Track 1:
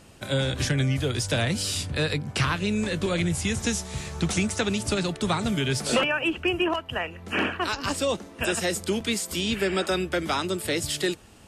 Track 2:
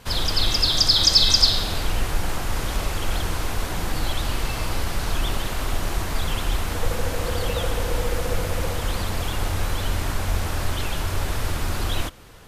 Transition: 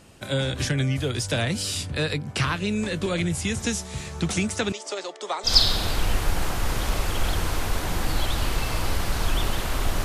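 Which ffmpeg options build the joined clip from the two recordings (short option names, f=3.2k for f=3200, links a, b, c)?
-filter_complex "[0:a]asettb=1/sr,asplit=3[a][b][c];[a]atrim=end=4.724[d];[b]atrim=start=4.72:end=5.53,asetpts=PTS-STARTPTS,afade=t=in:d=0.004:c=qsin,afade=t=out:st=0.806:d=0.004:c=qsin,highpass=f=440:w=0.5412,highpass=f=440:w=1.3066,equalizer=f=1.5k:t=q:w=4:g=-7,equalizer=f=2.6k:t=q:w=4:g=-8,equalizer=f=4k:t=q:w=4:g=-6,lowpass=f=7.3k:w=0.5412,lowpass=f=7.3k:w=1.3066[e];[c]atrim=start=5.526[f];[d][e]acrossfade=d=0.004:c1=hsin:c2=qsin[g];[g][f]acrossfade=d=0.004:c1=qsin:c2=hsin,apad=whole_dur=10.04,atrim=end=10.04,atrim=end=5.53,asetpts=PTS-STARTPTS[h];[1:a]atrim=start=1.3:end=5.91,asetpts=PTS-STARTPTS[i];[h][i]acrossfade=d=0.1:c1=tri:c2=tri"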